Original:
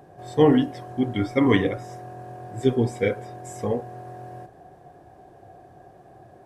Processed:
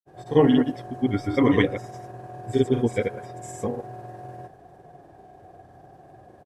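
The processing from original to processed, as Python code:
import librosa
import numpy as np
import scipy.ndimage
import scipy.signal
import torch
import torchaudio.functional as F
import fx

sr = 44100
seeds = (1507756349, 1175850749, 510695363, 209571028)

y = fx.granulator(x, sr, seeds[0], grain_ms=100.0, per_s=20.0, spray_ms=100.0, spread_st=0)
y = y * 10.0 ** (1.0 / 20.0)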